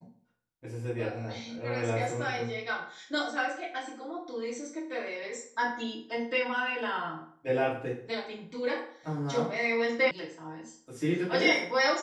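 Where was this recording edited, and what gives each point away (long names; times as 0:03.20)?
0:10.11: cut off before it has died away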